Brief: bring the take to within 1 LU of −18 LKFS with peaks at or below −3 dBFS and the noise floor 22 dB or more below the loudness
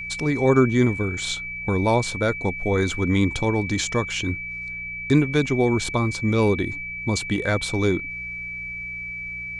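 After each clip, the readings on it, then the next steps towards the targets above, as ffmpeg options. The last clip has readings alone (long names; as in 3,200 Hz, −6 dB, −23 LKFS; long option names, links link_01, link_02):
mains hum 60 Hz; hum harmonics up to 180 Hz; level of the hum −44 dBFS; interfering tone 2,300 Hz; level of the tone −30 dBFS; integrated loudness −23.0 LKFS; sample peak −5.0 dBFS; target loudness −18.0 LKFS
→ -af "bandreject=frequency=60:width_type=h:width=4,bandreject=frequency=120:width_type=h:width=4,bandreject=frequency=180:width_type=h:width=4"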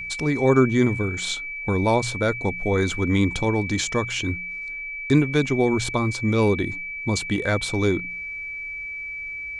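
mains hum none found; interfering tone 2,300 Hz; level of the tone −30 dBFS
→ -af "bandreject=frequency=2300:width=30"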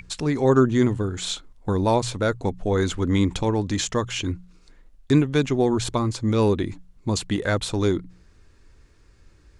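interfering tone none found; integrated loudness −23.0 LKFS; sample peak −5.5 dBFS; target loudness −18.0 LKFS
→ -af "volume=5dB,alimiter=limit=-3dB:level=0:latency=1"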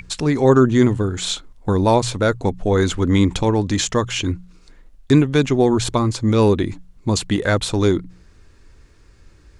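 integrated loudness −18.5 LKFS; sample peak −3.0 dBFS; background noise floor −50 dBFS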